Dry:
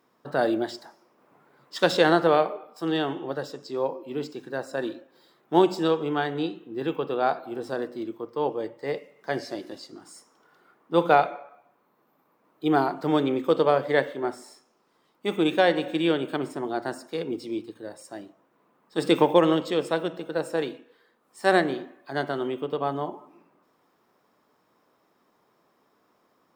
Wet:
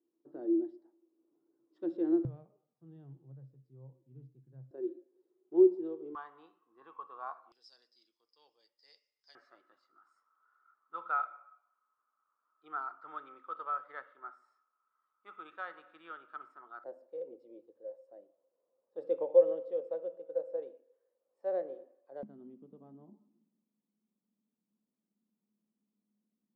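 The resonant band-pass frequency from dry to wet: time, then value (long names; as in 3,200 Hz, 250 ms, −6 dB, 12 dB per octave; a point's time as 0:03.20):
resonant band-pass, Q 17
330 Hz
from 0:02.25 130 Hz
from 0:04.71 370 Hz
from 0:06.15 1,100 Hz
from 0:07.52 5,000 Hz
from 0:09.35 1,300 Hz
from 0:16.84 530 Hz
from 0:22.23 210 Hz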